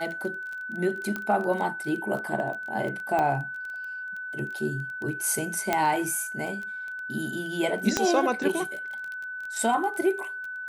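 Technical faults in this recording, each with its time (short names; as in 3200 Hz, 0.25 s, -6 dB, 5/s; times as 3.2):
crackle 17/s -32 dBFS
tone 1500 Hz -33 dBFS
1.16 pop -17 dBFS
3.19 pop -15 dBFS
5.73 pop -9 dBFS
7.97 pop -8 dBFS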